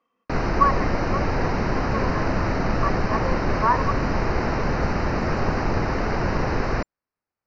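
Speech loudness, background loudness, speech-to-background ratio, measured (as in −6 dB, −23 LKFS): −27.0 LKFS, −24.5 LKFS, −2.5 dB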